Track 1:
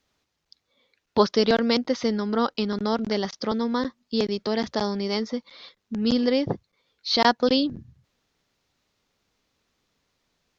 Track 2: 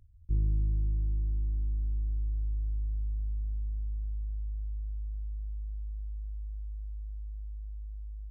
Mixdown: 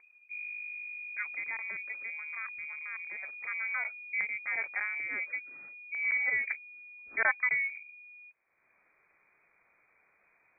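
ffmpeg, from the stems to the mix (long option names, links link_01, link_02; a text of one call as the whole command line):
ffmpeg -i stem1.wav -i stem2.wav -filter_complex "[0:a]equalizer=frequency=380:width=7.7:gain=-6.5,volume=-8dB,afade=type=in:start_time=3.12:duration=0.75:silence=0.316228[link_01];[1:a]aeval=exprs='clip(val(0),-1,0.0237)':channel_layout=same,volume=-12.5dB[link_02];[link_01][link_02]amix=inputs=2:normalize=0,acompressor=mode=upward:threshold=-52dB:ratio=2.5,lowpass=frequency=2100:width_type=q:width=0.5098,lowpass=frequency=2100:width_type=q:width=0.6013,lowpass=frequency=2100:width_type=q:width=0.9,lowpass=frequency=2100:width_type=q:width=2.563,afreqshift=-2500" out.wav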